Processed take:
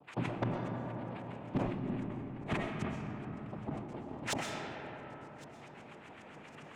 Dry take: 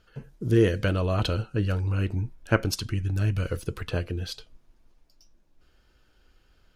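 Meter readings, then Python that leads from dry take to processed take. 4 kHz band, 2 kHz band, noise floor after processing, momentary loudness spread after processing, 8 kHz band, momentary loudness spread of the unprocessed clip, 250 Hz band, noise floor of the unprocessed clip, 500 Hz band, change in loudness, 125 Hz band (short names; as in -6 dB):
-11.0 dB, -9.0 dB, -53 dBFS, 15 LU, -7.5 dB, 11 LU, -8.0 dB, -63 dBFS, -12.0 dB, -12.5 dB, -14.5 dB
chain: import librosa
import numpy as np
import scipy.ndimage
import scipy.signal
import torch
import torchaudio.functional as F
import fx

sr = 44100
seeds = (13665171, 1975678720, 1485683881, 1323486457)

y = fx.high_shelf(x, sr, hz=5700.0, db=-11.5)
y = fx.hpss(y, sr, part='percussive', gain_db=5)
y = fx.low_shelf(y, sr, hz=130.0, db=4.0)
y = fx.rider(y, sr, range_db=10, speed_s=2.0)
y = fx.filter_lfo_lowpass(y, sr, shape='saw_up', hz=7.4, low_hz=400.0, high_hz=2600.0, q=3.4)
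y = fx.gate_flip(y, sr, shuts_db=-17.0, range_db=-34)
y = fx.noise_vocoder(y, sr, seeds[0], bands=4)
y = 10.0 ** (-31.5 / 20.0) * np.tanh(y / 10.0 ** (-31.5 / 20.0))
y = fx.echo_feedback(y, sr, ms=1110, feedback_pct=32, wet_db=-21.5)
y = fx.rev_freeverb(y, sr, rt60_s=5.0, hf_ratio=0.3, predelay_ms=85, drr_db=0.0)
y = fx.sustainer(y, sr, db_per_s=50.0)
y = y * 10.0 ** (4.5 / 20.0)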